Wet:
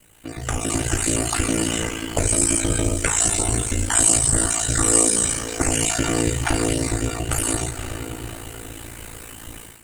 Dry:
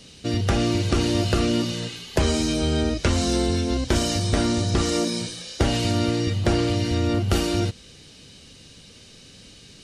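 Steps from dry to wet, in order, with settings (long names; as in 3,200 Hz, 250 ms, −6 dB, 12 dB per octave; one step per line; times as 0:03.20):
time-frequency cells dropped at random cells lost 32%
octave-band graphic EQ 125/250/500/4,000/8,000 Hz −11/−6/−8/−8/+5 dB
feedback delay with all-pass diffusion 484 ms, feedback 48%, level −15 dB
low-pass that shuts in the quiet parts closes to 2,600 Hz, open at −24 dBFS
downward compressor 4 to 1, threshold −33 dBFS, peak gain reduction 10 dB
background noise pink −59 dBFS
high shelf with overshoot 6,700 Hz +7.5 dB, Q 3
automatic gain control gain up to 16.5 dB
feedback delay network reverb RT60 0.4 s, low-frequency decay 1×, high-frequency decay 0.8×, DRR 2 dB
ring modulation 28 Hz
highs frequency-modulated by the lows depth 0.12 ms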